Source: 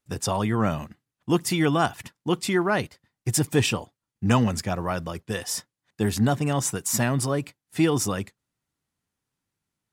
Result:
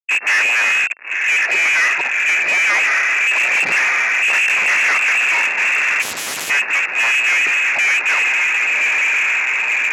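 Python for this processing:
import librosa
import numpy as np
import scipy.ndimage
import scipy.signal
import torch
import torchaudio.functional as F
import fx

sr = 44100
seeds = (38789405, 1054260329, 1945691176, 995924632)

p1 = fx.lpc_vocoder(x, sr, seeds[0], excitation='whisper', order=10, at=(3.32, 5.18))
p2 = p1 + fx.echo_diffused(p1, sr, ms=1093, feedback_pct=60, wet_db=-12.0, dry=0)
p3 = fx.fuzz(p2, sr, gain_db=41.0, gate_db=-47.0)
p4 = fx.freq_invert(p3, sr, carrier_hz=2700)
p5 = fx.peak_eq(p4, sr, hz=1800.0, db=7.5, octaves=0.52)
p6 = 10.0 ** (-11.0 / 20.0) * np.tanh(p5 / 10.0 ** (-11.0 / 20.0))
p7 = scipy.signal.sosfilt(scipy.signal.butter(2, 420.0, 'highpass', fs=sr, output='sos'), p6)
y = fx.spectral_comp(p7, sr, ratio=4.0, at=(6.01, 6.49), fade=0.02)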